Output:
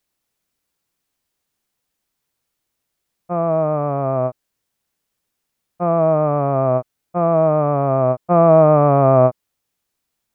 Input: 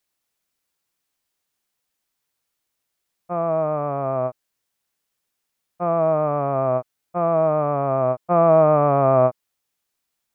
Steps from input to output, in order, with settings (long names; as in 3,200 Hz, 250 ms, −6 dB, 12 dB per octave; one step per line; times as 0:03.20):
low-shelf EQ 470 Hz +6.5 dB
level +1 dB